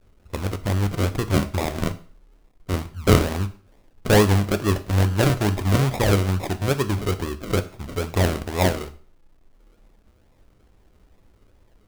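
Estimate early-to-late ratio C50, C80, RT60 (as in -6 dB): 16.0 dB, 19.5 dB, 0.45 s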